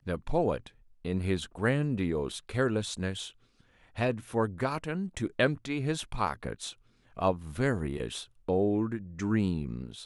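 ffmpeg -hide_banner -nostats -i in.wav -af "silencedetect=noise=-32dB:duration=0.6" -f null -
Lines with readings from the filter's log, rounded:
silence_start: 3.26
silence_end: 3.98 | silence_duration: 0.73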